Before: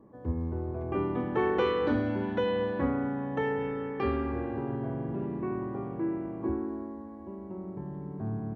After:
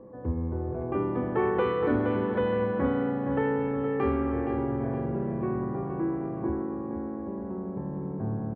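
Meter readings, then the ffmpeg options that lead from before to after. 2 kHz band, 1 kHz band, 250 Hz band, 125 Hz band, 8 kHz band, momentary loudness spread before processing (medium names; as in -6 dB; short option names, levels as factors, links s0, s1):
+0.5 dB, +2.5 dB, +3.0 dB, +3.0 dB, no reading, 11 LU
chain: -filter_complex "[0:a]asplit=2[s0][s1];[s1]acompressor=threshold=0.0112:ratio=6,volume=0.794[s2];[s0][s2]amix=inputs=2:normalize=0,aeval=exprs='val(0)+0.00355*sin(2*PI*510*n/s)':c=same,lowpass=2100,aecho=1:1:469|938|1407|1876|2345:0.422|0.181|0.078|0.0335|0.0144"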